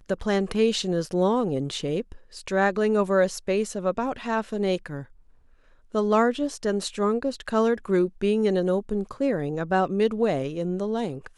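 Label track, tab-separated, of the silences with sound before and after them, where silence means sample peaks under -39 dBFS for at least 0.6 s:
5.040000	5.940000	silence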